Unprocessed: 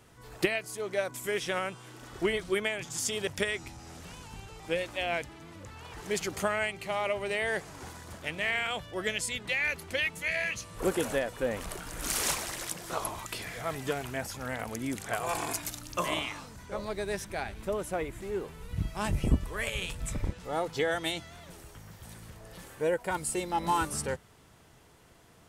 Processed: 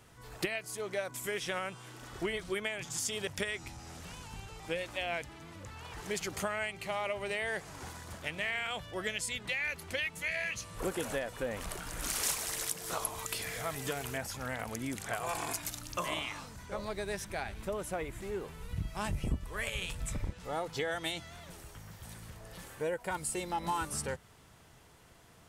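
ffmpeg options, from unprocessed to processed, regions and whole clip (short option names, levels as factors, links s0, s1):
-filter_complex "[0:a]asettb=1/sr,asplit=3[s0][s1][s2];[s0]atrim=end=12.234[s3];[s1]atrim=start=12.23:end=14.18,asetpts=PTS-STARTPTS,afade=t=in:d=0.004:c=qsin,afade=t=out:st=1.946:d=0.004:c=qsin,highshelf=f=5400:g=8,aeval=exprs='val(0)+0.00562*sin(2*PI*450*n/s)':c=same[s4];[s2]atrim=start=14.176[s5];[s3][s4]acrossfade=d=0.004:c1=hsin:c2=qsin[s6];[s6][s5]acrossfade=d=0.004:c1=qsin:c2=hsin,equalizer=f=340:w=0.9:g=-3,acompressor=threshold=0.02:ratio=2"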